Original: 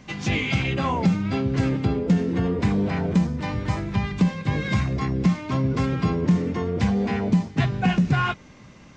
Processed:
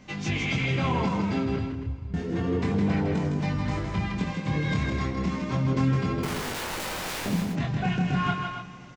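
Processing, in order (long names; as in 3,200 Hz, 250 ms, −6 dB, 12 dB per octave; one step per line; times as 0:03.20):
0:01.56–0:02.14: inverse Chebyshev low-pass filter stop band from 570 Hz, stop band 80 dB
brickwall limiter −16 dBFS, peak gain reduction 7 dB
convolution reverb RT60 2.4 s, pre-delay 113 ms, DRR 14.5 dB
0:06.23–0:07.26: wrap-around overflow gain 26.5 dB
chorus effect 0.31 Hz, delay 20 ms, depth 7.1 ms
loudspeakers that aren't time-aligned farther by 55 metres −5 dB, 94 metres −9 dB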